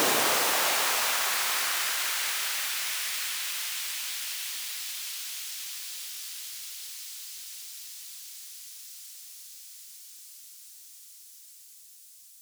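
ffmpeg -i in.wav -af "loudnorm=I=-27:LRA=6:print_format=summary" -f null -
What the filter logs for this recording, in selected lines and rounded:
Input Integrated:    -28.6 LUFS
Input True Peak:     -11.3 dBTP
Input LRA:            19.0 LU
Input Threshold:     -41.1 LUFS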